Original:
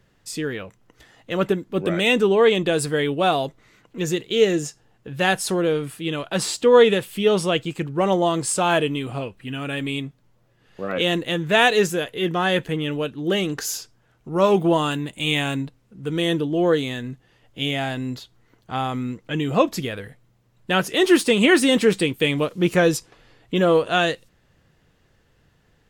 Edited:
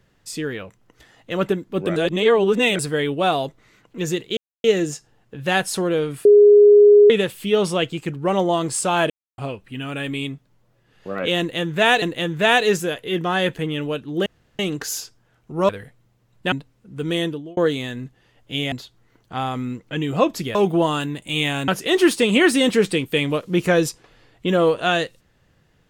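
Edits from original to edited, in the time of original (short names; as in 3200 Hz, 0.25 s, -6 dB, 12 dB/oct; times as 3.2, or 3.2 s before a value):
1.96–2.79 reverse
4.37 insert silence 0.27 s
5.98–6.83 bleep 413 Hz -6.5 dBFS
8.83–9.11 mute
11.12–11.75 loop, 2 plays
13.36 insert room tone 0.33 s
14.46–15.59 swap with 19.93–20.76
16.23–16.64 fade out
17.79–18.1 cut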